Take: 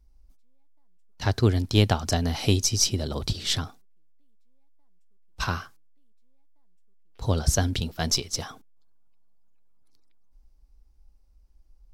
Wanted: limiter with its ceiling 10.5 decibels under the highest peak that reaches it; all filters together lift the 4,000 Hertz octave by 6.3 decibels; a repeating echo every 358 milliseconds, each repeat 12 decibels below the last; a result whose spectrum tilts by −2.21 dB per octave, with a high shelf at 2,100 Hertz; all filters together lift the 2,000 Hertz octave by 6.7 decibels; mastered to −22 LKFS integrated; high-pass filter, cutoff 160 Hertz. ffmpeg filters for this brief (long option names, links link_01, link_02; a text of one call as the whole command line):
ffmpeg -i in.wav -af "highpass=160,equalizer=frequency=2000:width_type=o:gain=6.5,highshelf=frequency=2100:gain=3,equalizer=frequency=4000:width_type=o:gain=3.5,alimiter=limit=-11.5dB:level=0:latency=1,aecho=1:1:358|716|1074:0.251|0.0628|0.0157,volume=4dB" out.wav